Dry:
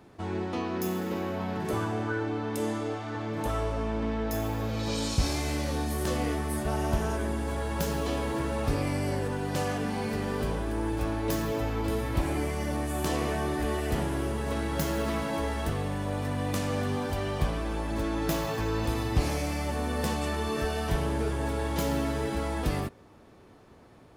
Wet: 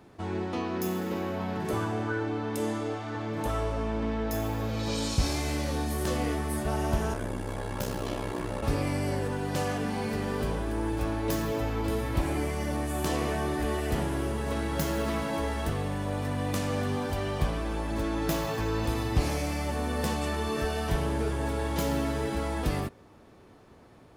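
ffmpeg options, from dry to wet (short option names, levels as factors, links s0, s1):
-filter_complex "[0:a]asplit=3[s0][s1][s2];[s0]afade=t=out:st=7.13:d=0.02[s3];[s1]aeval=exprs='val(0)*sin(2*PI*32*n/s)':c=same,afade=t=in:st=7.13:d=0.02,afade=t=out:st=8.61:d=0.02[s4];[s2]afade=t=in:st=8.61:d=0.02[s5];[s3][s4][s5]amix=inputs=3:normalize=0"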